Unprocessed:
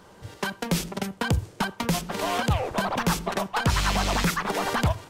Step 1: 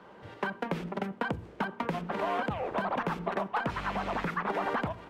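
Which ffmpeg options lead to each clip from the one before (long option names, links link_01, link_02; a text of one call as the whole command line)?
ffmpeg -i in.wav -filter_complex "[0:a]bandreject=frequency=58.45:width_type=h:width=4,bandreject=frequency=116.9:width_type=h:width=4,bandreject=frequency=175.35:width_type=h:width=4,bandreject=frequency=233.8:width_type=h:width=4,bandreject=frequency=292.25:width_type=h:width=4,bandreject=frequency=350.7:width_type=h:width=4,bandreject=frequency=409.15:width_type=h:width=4,bandreject=frequency=467.6:width_type=h:width=4,acrossover=split=2100|6400[link_01][link_02][link_03];[link_01]acompressor=threshold=-27dB:ratio=4[link_04];[link_02]acompressor=threshold=-46dB:ratio=4[link_05];[link_03]acompressor=threshold=-44dB:ratio=4[link_06];[link_04][link_05][link_06]amix=inputs=3:normalize=0,acrossover=split=160 3200:gain=0.224 1 0.0794[link_07][link_08][link_09];[link_07][link_08][link_09]amix=inputs=3:normalize=0" out.wav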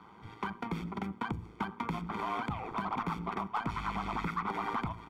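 ffmpeg -i in.wav -filter_complex "[0:a]aecho=1:1:0.9:0.86,asplit=2[link_01][link_02];[link_02]asoftclip=type=tanh:threshold=-29dB,volume=-5dB[link_03];[link_01][link_03]amix=inputs=2:normalize=0,tremolo=f=110:d=0.571,volume=-5.5dB" out.wav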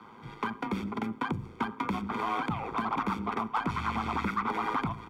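ffmpeg -i in.wav -af "afreqshift=27,volume=4dB" out.wav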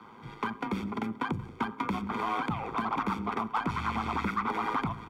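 ffmpeg -i in.wav -af "aecho=1:1:181:0.0891" out.wav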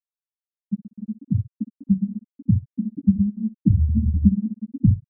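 ffmpeg -i in.wav -af "asubboost=boost=9:cutoff=210,afftfilt=real='re*gte(hypot(re,im),0.501)':imag='im*gte(hypot(re,im),0.501)':win_size=1024:overlap=0.75,aecho=1:1:10|63:0.531|0.141,volume=5dB" out.wav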